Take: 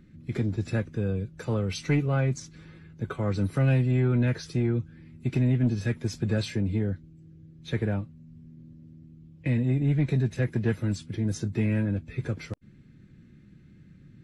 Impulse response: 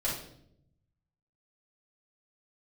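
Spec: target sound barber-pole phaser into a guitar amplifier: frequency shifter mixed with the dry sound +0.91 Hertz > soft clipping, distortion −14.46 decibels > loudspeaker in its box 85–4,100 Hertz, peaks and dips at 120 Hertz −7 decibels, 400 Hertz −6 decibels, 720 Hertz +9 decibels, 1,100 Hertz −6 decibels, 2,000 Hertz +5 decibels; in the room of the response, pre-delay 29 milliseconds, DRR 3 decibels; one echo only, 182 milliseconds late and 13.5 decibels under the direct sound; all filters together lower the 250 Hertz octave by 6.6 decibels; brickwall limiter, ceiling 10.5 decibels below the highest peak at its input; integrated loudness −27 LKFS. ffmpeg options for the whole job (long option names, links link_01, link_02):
-filter_complex "[0:a]equalizer=frequency=250:width_type=o:gain=-7,alimiter=level_in=3dB:limit=-24dB:level=0:latency=1,volume=-3dB,aecho=1:1:182:0.211,asplit=2[link_01][link_02];[1:a]atrim=start_sample=2205,adelay=29[link_03];[link_02][link_03]afir=irnorm=-1:irlink=0,volume=-9dB[link_04];[link_01][link_04]amix=inputs=2:normalize=0,asplit=2[link_05][link_06];[link_06]afreqshift=0.91[link_07];[link_05][link_07]amix=inputs=2:normalize=1,asoftclip=threshold=-27.5dB,highpass=85,equalizer=frequency=120:width_type=q:width=4:gain=-7,equalizer=frequency=400:width_type=q:width=4:gain=-6,equalizer=frequency=720:width_type=q:width=4:gain=9,equalizer=frequency=1100:width_type=q:width=4:gain=-6,equalizer=frequency=2000:width_type=q:width=4:gain=5,lowpass=frequency=4100:width=0.5412,lowpass=frequency=4100:width=1.3066,volume=13.5dB"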